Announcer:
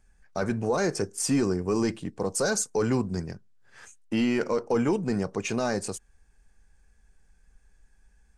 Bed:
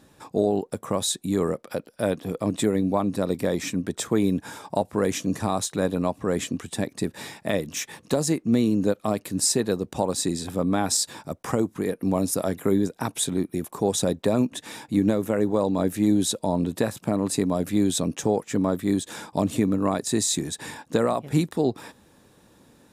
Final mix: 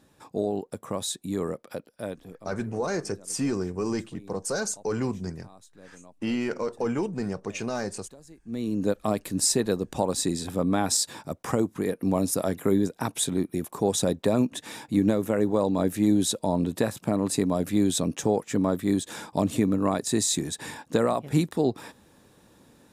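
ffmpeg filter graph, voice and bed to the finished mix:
-filter_complex "[0:a]adelay=2100,volume=-3dB[a];[1:a]volume=20dB,afade=t=out:st=1.71:d=0.82:silence=0.0891251,afade=t=in:st=8.42:d=0.56:silence=0.0530884[b];[a][b]amix=inputs=2:normalize=0"

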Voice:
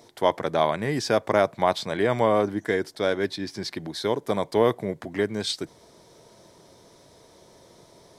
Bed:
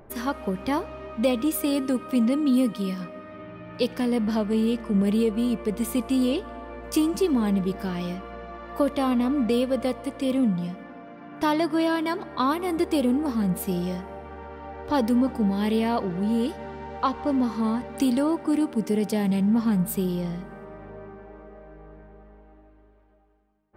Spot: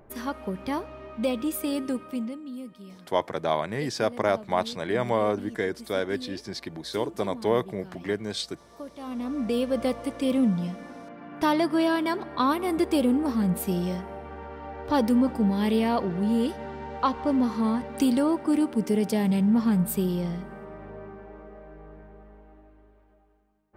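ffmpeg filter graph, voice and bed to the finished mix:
-filter_complex "[0:a]adelay=2900,volume=-3.5dB[a];[1:a]volume=13dB,afade=t=out:st=1.91:d=0.5:silence=0.223872,afade=t=in:st=8.98:d=0.9:silence=0.141254[b];[a][b]amix=inputs=2:normalize=0"

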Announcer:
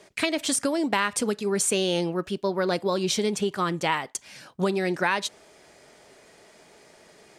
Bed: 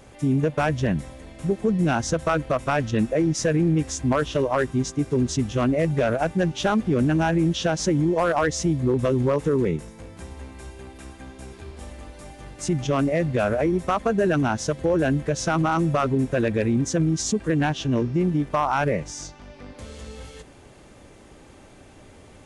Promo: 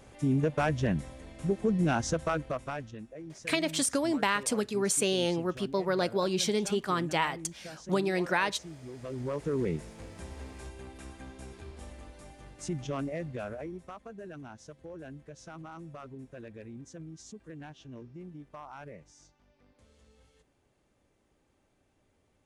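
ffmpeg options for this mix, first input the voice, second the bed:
-filter_complex "[0:a]adelay=3300,volume=-3.5dB[a];[1:a]volume=12.5dB,afade=t=out:st=2.05:d=0.94:silence=0.133352,afade=t=in:st=8.97:d=1.01:silence=0.125893,afade=t=out:st=11.18:d=2.81:silence=0.11885[b];[a][b]amix=inputs=2:normalize=0"

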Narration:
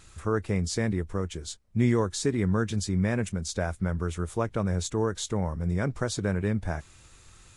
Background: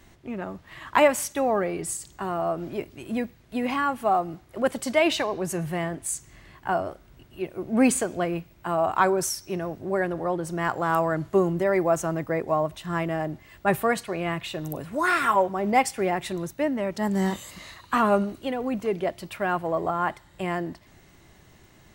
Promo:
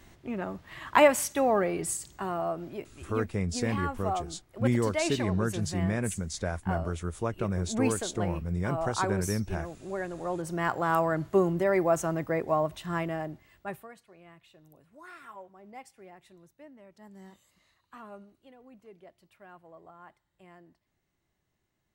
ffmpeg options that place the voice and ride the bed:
-filter_complex "[0:a]adelay=2850,volume=-3dB[a];[1:a]volume=5.5dB,afade=t=out:st=1.9:d=1:silence=0.398107,afade=t=in:st=10.13:d=0.43:silence=0.473151,afade=t=out:st=12.82:d=1.06:silence=0.0707946[b];[a][b]amix=inputs=2:normalize=0"

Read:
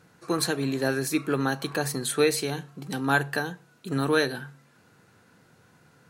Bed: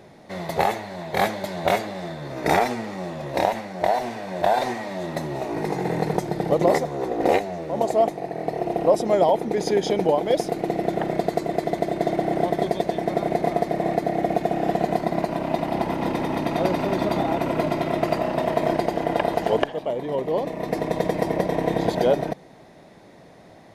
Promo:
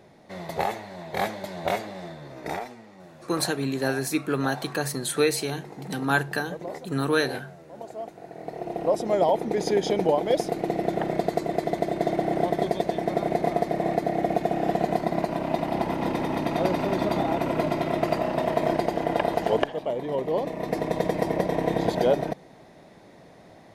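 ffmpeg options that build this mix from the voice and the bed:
-filter_complex "[0:a]adelay=3000,volume=0dB[a];[1:a]volume=9.5dB,afade=t=out:st=2:d=0.72:silence=0.266073,afade=t=in:st=8.03:d=1.44:silence=0.177828[b];[a][b]amix=inputs=2:normalize=0"

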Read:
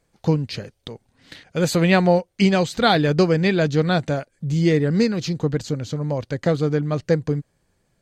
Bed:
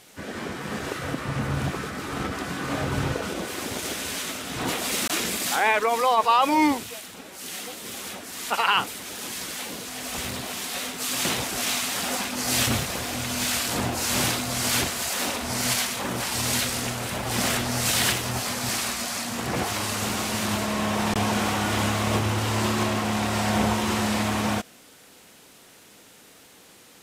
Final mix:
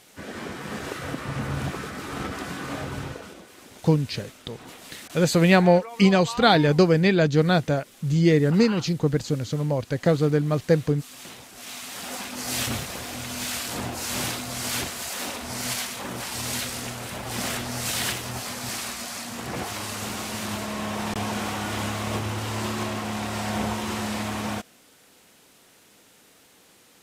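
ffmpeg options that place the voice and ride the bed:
-filter_complex "[0:a]adelay=3600,volume=-0.5dB[a];[1:a]volume=10dB,afade=t=out:st=2.48:d=0.97:silence=0.188365,afade=t=in:st=11.53:d=0.83:silence=0.251189[b];[a][b]amix=inputs=2:normalize=0"

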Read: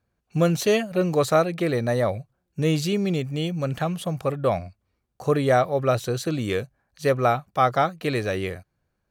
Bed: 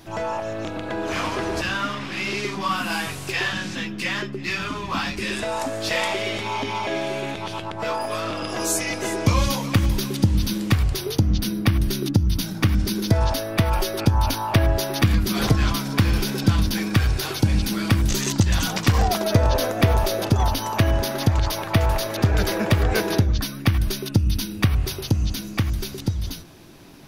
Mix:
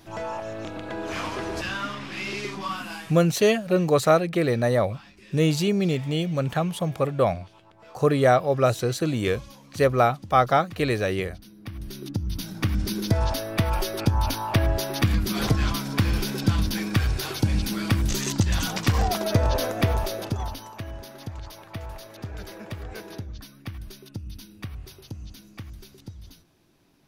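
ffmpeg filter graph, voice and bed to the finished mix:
-filter_complex "[0:a]adelay=2750,volume=1dB[a];[1:a]volume=15dB,afade=t=out:st=2.54:d=0.73:silence=0.11885,afade=t=in:st=11.57:d=1.41:silence=0.1,afade=t=out:st=19.7:d=1.05:silence=0.211349[b];[a][b]amix=inputs=2:normalize=0"

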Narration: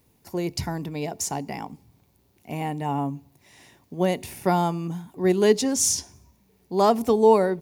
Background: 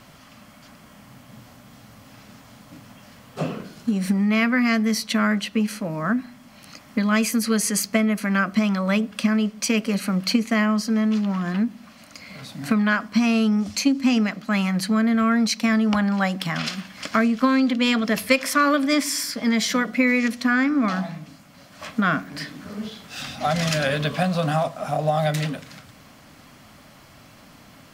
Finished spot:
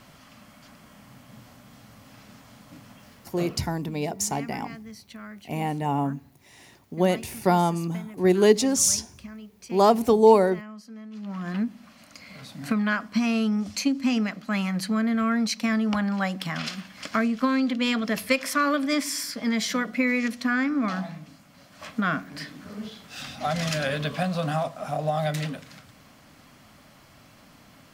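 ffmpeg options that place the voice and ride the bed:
-filter_complex "[0:a]adelay=3000,volume=1dB[a];[1:a]volume=13.5dB,afade=t=out:st=2.93:d=0.91:silence=0.125893,afade=t=in:st=11.12:d=0.43:silence=0.149624[b];[a][b]amix=inputs=2:normalize=0"

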